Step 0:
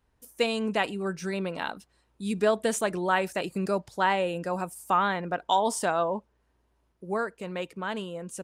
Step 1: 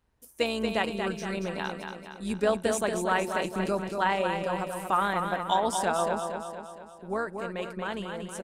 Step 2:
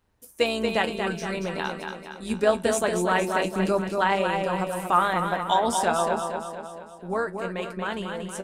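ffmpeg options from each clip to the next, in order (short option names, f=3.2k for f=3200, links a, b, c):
-filter_complex "[0:a]asplit=2[a][b];[b]aecho=0:1:232|464|696|928|1160|1392|1624:0.501|0.266|0.141|0.0746|0.0395|0.021|0.0111[c];[a][c]amix=inputs=2:normalize=0,tremolo=f=160:d=0.4"
-af "bandreject=f=50:t=h:w=6,bandreject=f=100:t=h:w=6,bandreject=f=150:t=h:w=6,bandreject=f=200:t=h:w=6,flanger=delay=10:depth=2.9:regen=59:speed=0.25:shape=sinusoidal,volume=8dB"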